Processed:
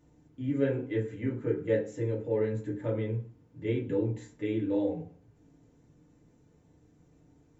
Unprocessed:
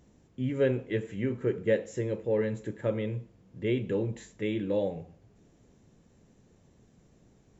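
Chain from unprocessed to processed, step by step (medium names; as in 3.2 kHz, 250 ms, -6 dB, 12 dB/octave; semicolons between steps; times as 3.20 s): FDN reverb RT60 0.33 s, low-frequency decay 1.3×, high-frequency decay 0.4×, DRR -3.5 dB; trim -8 dB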